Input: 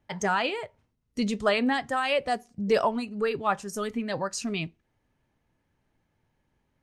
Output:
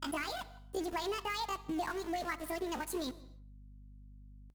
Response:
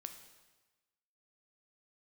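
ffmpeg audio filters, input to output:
-filter_complex "[0:a]adynamicequalizer=threshold=0.00708:dfrequency=140:dqfactor=0.78:tfrequency=140:tqfactor=0.78:attack=5:release=100:ratio=0.375:range=2:mode=boostabove:tftype=bell,acompressor=threshold=-34dB:ratio=5,atempo=1.5,aeval=exprs='val(0)*gte(abs(val(0)),0.00794)':channel_layout=same,asetrate=70004,aresample=44100,atempo=0.629961,aeval=exprs='val(0)+0.002*(sin(2*PI*50*n/s)+sin(2*PI*2*50*n/s)/2+sin(2*PI*3*50*n/s)/3+sin(2*PI*4*50*n/s)/4+sin(2*PI*5*50*n/s)/5)':channel_layout=same,asplit=2[link_01][link_02];[link_02]adelay=160,lowpass=frequency=2400:poles=1,volume=-20dB,asplit=2[link_03][link_04];[link_04]adelay=160,lowpass=frequency=2400:poles=1,volume=0.16[link_05];[link_01][link_03][link_05]amix=inputs=3:normalize=0,asplit=2[link_06][link_07];[1:a]atrim=start_sample=2205,afade=type=out:start_time=0.35:duration=0.01,atrim=end_sample=15876[link_08];[link_07][link_08]afir=irnorm=-1:irlink=0,volume=-1.5dB[link_09];[link_06][link_09]amix=inputs=2:normalize=0,volume=-4dB"

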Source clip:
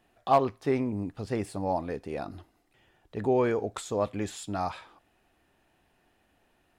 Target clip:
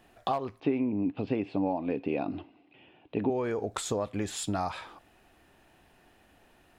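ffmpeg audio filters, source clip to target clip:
ffmpeg -i in.wav -filter_complex "[0:a]acompressor=threshold=-34dB:ratio=12,asettb=1/sr,asplit=3[link_01][link_02][link_03];[link_01]atrim=end=0.604[link_04];[link_02]atrim=start=0.6:end=3.3,asetpts=PTS-STARTPTS,afade=type=in:duration=0.004:curve=qsin,afade=type=out:start_time=2.696:duration=0.004:curve=qsin,highpass=140,equalizer=frequency=280:width_type=q:width=4:gain=8,equalizer=frequency=1300:width_type=q:width=4:gain=-7,equalizer=frequency=1800:width_type=q:width=4:gain=-8,equalizer=frequency=2600:width_type=q:width=4:gain=8,lowpass=frequency=3300:width=0.5412,lowpass=frequency=3300:width=1.3066[link_05];[link_03]atrim=start=3.296[link_06];[link_04][link_05]acrossfade=duration=0.004:curve1=hsin:curve2=qsin[link_07];[link_07][link_06]acrossfade=duration=0.004:curve1=qsin:curve2=hsin,volume=7dB" out.wav

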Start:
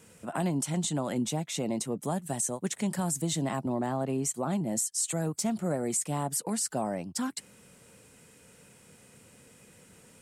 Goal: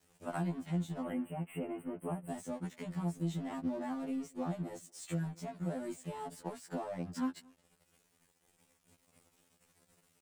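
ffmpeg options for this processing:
ffmpeg -i in.wav -filter_complex "[0:a]highpass=frequency=89:poles=1,lowshelf=frequency=190:gain=9,acrossover=split=3400[link_01][link_02];[link_02]alimiter=level_in=12dB:limit=-24dB:level=0:latency=1:release=479,volume=-12dB[link_03];[link_01][link_03]amix=inputs=2:normalize=0,acompressor=threshold=-33dB:ratio=5,aeval=exprs='sgn(val(0))*max(abs(val(0))-0.00316,0)':channel_layout=same,asettb=1/sr,asplit=3[link_04][link_05][link_06];[link_04]atrim=end=1.024[link_07];[link_05]atrim=start=1.02:end=2.3,asetpts=PTS-STARTPTS,afade=type=in:duration=0.004:curve=qsin,afade=type=out:start_time=1.276:duration=0.004:curve=qsin,asuperstop=centerf=5100:order=20:qfactor=1[link_08];[link_06]atrim=start=2.296[link_09];[link_07][link_08]acrossfade=duration=0.004:curve1=hsin:curve2=qsin[link_10];[link_10][link_09]acrossfade=duration=0.004:curve1=qsin:curve2=hsin,asplit=2[link_11][link_12];[link_12]adelay=227.4,volume=-27dB,highshelf=frequency=4000:gain=-5.12[link_13];[link_11][link_13]amix=inputs=2:normalize=0,afftfilt=real='re*2*eq(mod(b,4),0)':imag='im*2*eq(mod(b,4),0)':win_size=2048:overlap=0.75,volume=1dB" out.wav

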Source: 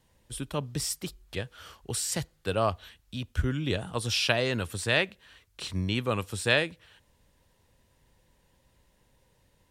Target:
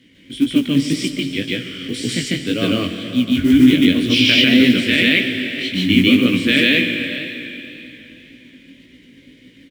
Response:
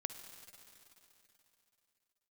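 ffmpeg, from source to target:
-filter_complex "[0:a]agate=range=-33dB:threshold=-57dB:ratio=3:detection=peak,acompressor=mode=upward:threshold=-43dB:ratio=2.5,asplit=3[link_01][link_02][link_03];[link_01]bandpass=frequency=270:width_type=q:width=8,volume=0dB[link_04];[link_02]bandpass=frequency=2290:width_type=q:width=8,volume=-6dB[link_05];[link_03]bandpass=frequency=3010:width_type=q:width=8,volume=-9dB[link_06];[link_04][link_05][link_06]amix=inputs=3:normalize=0,acrusher=bits=7:mode=log:mix=0:aa=0.000001,asplit=2[link_07][link_08];[link_08]adelay=472.3,volume=-16dB,highshelf=frequency=4000:gain=-10.6[link_09];[link_07][link_09]amix=inputs=2:normalize=0,asplit=2[link_10][link_11];[1:a]atrim=start_sample=2205,adelay=148[link_12];[link_11][link_12]afir=irnorm=-1:irlink=0,volume=4.5dB[link_13];[link_10][link_13]amix=inputs=2:normalize=0,flanger=delay=16:depth=6:speed=1.9,alimiter=level_in=28.5dB:limit=-1dB:release=50:level=0:latency=1,volume=-1dB"

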